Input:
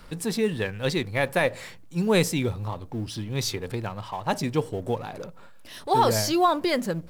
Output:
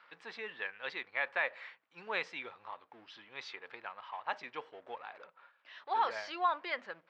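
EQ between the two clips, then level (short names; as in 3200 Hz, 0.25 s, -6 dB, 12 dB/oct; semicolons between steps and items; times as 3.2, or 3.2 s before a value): HPF 1300 Hz 12 dB/oct; LPF 2400 Hz 12 dB/oct; air absorption 150 m; -1.5 dB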